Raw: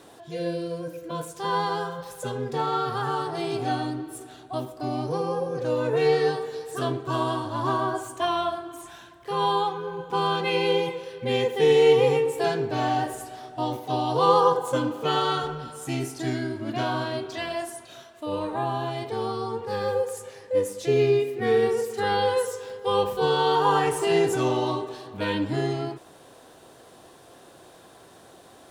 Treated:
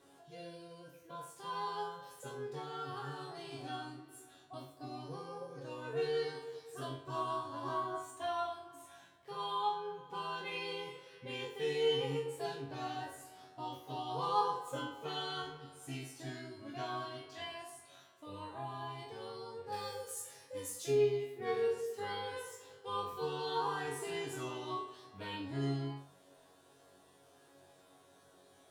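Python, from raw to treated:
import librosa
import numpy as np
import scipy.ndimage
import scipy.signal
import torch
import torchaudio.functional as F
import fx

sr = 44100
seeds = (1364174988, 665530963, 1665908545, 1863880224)

y = fx.high_shelf(x, sr, hz=3400.0, db=12.0, at=(19.72, 20.91))
y = fx.resonator_bank(y, sr, root=42, chord='fifth', decay_s=0.42)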